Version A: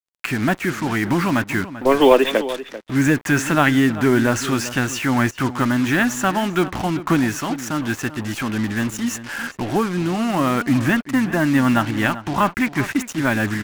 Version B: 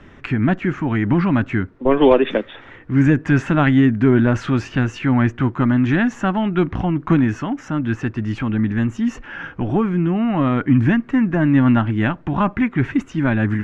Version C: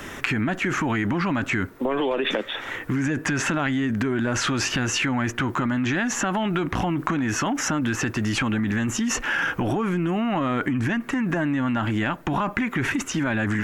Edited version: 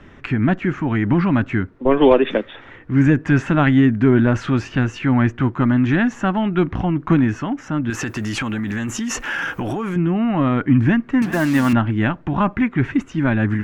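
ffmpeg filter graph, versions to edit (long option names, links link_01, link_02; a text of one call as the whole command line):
ffmpeg -i take0.wav -i take1.wav -i take2.wav -filter_complex "[1:a]asplit=3[link_01][link_02][link_03];[link_01]atrim=end=7.902[link_04];[2:a]atrim=start=7.898:end=9.962[link_05];[link_02]atrim=start=9.958:end=11.222[link_06];[0:a]atrim=start=11.218:end=11.732[link_07];[link_03]atrim=start=11.728[link_08];[link_04][link_05]acrossfade=duration=0.004:curve1=hsin:curve2=hsin[link_09];[link_09][link_06]acrossfade=duration=0.004:curve1=hsin:curve2=hsin[link_10];[link_10][link_07]acrossfade=duration=0.004:curve1=hsin:curve2=hsin[link_11];[link_11][link_08]acrossfade=duration=0.004:curve1=hsin:curve2=hsin" out.wav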